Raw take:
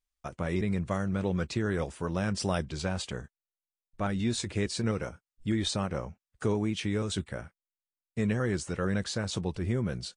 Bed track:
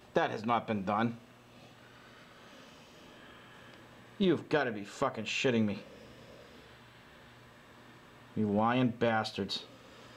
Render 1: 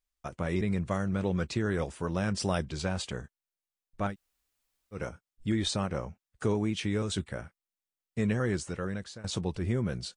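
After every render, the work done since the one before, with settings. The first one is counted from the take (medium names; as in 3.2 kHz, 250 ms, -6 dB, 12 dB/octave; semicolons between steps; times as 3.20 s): 4.11–4.96 s: room tone, crossfade 0.10 s; 8.52–9.24 s: fade out linear, to -17 dB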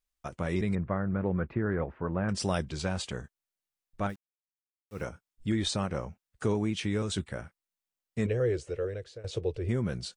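0.75–2.29 s: low-pass 1.9 kHz 24 dB/octave; 4.09–5.04 s: word length cut 10-bit, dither none; 8.26–9.69 s: FFT filter 130 Hz 0 dB, 190 Hz -19 dB, 460 Hz +9 dB, 920 Hz -12 dB, 2.5 kHz -3 dB, 8.3 kHz -11 dB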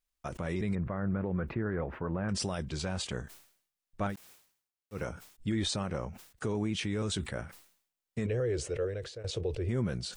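peak limiter -23 dBFS, peak gain reduction 7.5 dB; decay stretcher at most 99 dB/s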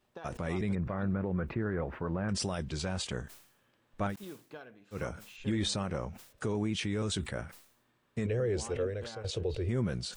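add bed track -18 dB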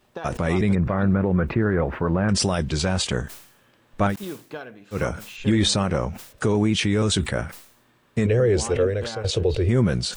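trim +12 dB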